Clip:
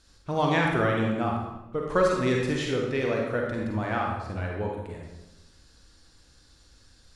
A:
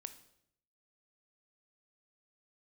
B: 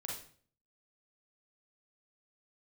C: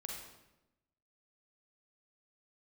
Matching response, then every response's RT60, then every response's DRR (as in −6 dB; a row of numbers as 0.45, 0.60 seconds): C; 0.70, 0.50, 0.95 seconds; 10.0, −2.5, −1.0 decibels